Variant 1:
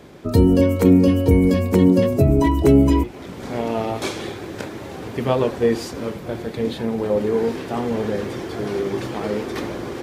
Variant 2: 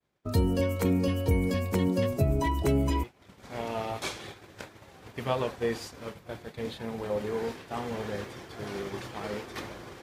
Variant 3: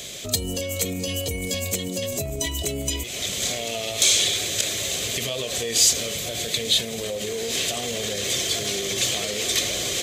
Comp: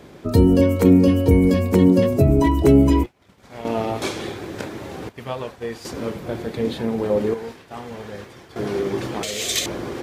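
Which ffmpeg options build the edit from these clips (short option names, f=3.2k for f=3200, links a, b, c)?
-filter_complex "[1:a]asplit=3[a][b][c];[0:a]asplit=5[d][e][f][g][h];[d]atrim=end=3.062[i];[a]atrim=start=3.058:end=3.652[j];[e]atrim=start=3.648:end=5.092[k];[b]atrim=start=5.088:end=5.852[l];[f]atrim=start=5.848:end=7.342[m];[c]atrim=start=7.338:end=8.562[n];[g]atrim=start=8.558:end=9.232[o];[2:a]atrim=start=9.228:end=9.662[p];[h]atrim=start=9.658[q];[i][j]acrossfade=d=0.004:c1=hsin:c2=hsin[r];[r][k]acrossfade=d=0.004:c1=hsin:c2=hsin[s];[s][l]acrossfade=d=0.004:c1=hsin:c2=hsin[t];[t][m]acrossfade=d=0.004:c1=hsin:c2=hsin[u];[u][n]acrossfade=d=0.004:c1=hsin:c2=hsin[v];[v][o]acrossfade=d=0.004:c1=hsin:c2=hsin[w];[w][p]acrossfade=d=0.004:c1=hsin:c2=hsin[x];[x][q]acrossfade=d=0.004:c1=hsin:c2=hsin"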